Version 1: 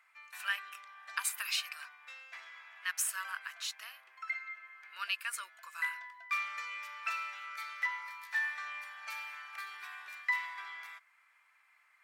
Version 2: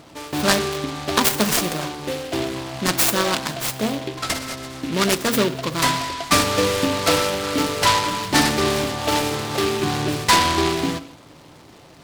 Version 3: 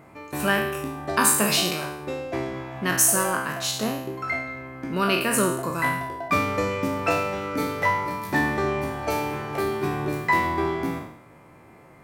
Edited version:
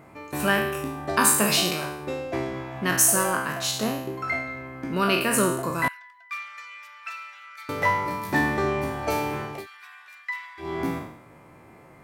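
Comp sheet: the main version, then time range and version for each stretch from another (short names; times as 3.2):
3
5.88–7.69 from 1
9.55–10.69 from 1, crossfade 0.24 s
not used: 2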